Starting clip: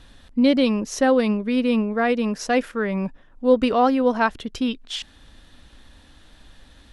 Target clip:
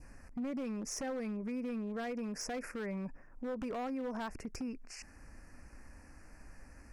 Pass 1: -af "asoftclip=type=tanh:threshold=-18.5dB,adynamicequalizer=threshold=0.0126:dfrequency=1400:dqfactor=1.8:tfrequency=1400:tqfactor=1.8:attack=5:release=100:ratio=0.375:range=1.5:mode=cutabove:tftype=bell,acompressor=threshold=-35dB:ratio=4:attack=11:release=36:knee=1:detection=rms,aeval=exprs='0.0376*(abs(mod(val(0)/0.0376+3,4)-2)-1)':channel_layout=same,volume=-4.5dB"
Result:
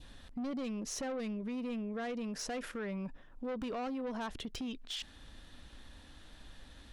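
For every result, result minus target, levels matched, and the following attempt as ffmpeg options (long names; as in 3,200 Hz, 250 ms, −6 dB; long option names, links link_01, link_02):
soft clipping: distortion +14 dB; 4,000 Hz band +6.0 dB
-af "asoftclip=type=tanh:threshold=-7dB,adynamicequalizer=threshold=0.0126:dfrequency=1400:dqfactor=1.8:tfrequency=1400:tqfactor=1.8:attack=5:release=100:ratio=0.375:range=1.5:mode=cutabove:tftype=bell,acompressor=threshold=-35dB:ratio=4:attack=11:release=36:knee=1:detection=rms,aeval=exprs='0.0376*(abs(mod(val(0)/0.0376+3,4)-2)-1)':channel_layout=same,volume=-4.5dB"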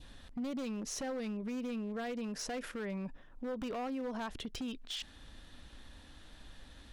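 4,000 Hz band +6.5 dB
-af "asoftclip=type=tanh:threshold=-7dB,adynamicequalizer=threshold=0.0126:dfrequency=1400:dqfactor=1.8:tfrequency=1400:tqfactor=1.8:attack=5:release=100:ratio=0.375:range=1.5:mode=cutabove:tftype=bell,acompressor=threshold=-35dB:ratio=4:attack=11:release=36:knee=1:detection=rms,asuperstop=centerf=3500:order=8:qfactor=1.5,aeval=exprs='0.0376*(abs(mod(val(0)/0.0376+3,4)-2)-1)':channel_layout=same,volume=-4.5dB"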